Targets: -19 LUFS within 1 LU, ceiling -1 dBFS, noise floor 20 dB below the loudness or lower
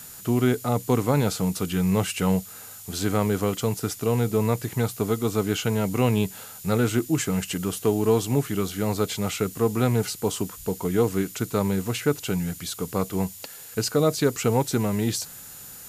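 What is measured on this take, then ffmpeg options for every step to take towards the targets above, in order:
steady tone 7 kHz; tone level -49 dBFS; noise floor -42 dBFS; noise floor target -45 dBFS; loudness -25.0 LUFS; peak level -8.0 dBFS; loudness target -19.0 LUFS
-> -af "bandreject=f=7000:w=30"
-af "afftdn=nr=6:nf=-42"
-af "volume=2"

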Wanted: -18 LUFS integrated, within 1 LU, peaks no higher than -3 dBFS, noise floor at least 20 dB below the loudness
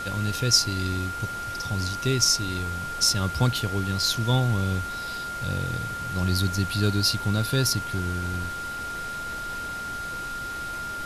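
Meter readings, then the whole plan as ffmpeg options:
steady tone 1.4 kHz; tone level -31 dBFS; noise floor -33 dBFS; noise floor target -46 dBFS; loudness -25.5 LUFS; peak level -5.5 dBFS; loudness target -18.0 LUFS
-> -af "bandreject=f=1400:w=30"
-af "afftdn=nr=13:nf=-33"
-af "volume=2.37,alimiter=limit=0.708:level=0:latency=1"

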